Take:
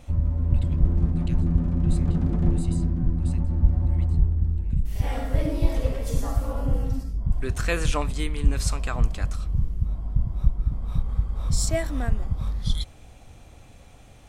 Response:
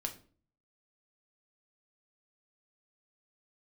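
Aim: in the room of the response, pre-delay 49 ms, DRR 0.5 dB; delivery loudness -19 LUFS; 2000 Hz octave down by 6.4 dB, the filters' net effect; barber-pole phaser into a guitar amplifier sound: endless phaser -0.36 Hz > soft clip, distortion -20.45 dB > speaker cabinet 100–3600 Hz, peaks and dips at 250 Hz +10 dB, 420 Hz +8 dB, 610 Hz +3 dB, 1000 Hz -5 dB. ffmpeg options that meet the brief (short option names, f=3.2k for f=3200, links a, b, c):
-filter_complex "[0:a]equalizer=f=2k:t=o:g=-8,asplit=2[a][b];[1:a]atrim=start_sample=2205,adelay=49[c];[b][c]afir=irnorm=-1:irlink=0,volume=-0.5dB[d];[a][d]amix=inputs=2:normalize=0,asplit=2[e][f];[f]afreqshift=-0.36[g];[e][g]amix=inputs=2:normalize=1,asoftclip=threshold=-12.5dB,highpass=100,equalizer=f=250:t=q:w=4:g=10,equalizer=f=420:t=q:w=4:g=8,equalizer=f=610:t=q:w=4:g=3,equalizer=f=1k:t=q:w=4:g=-5,lowpass=f=3.6k:w=0.5412,lowpass=f=3.6k:w=1.3066,volume=9dB"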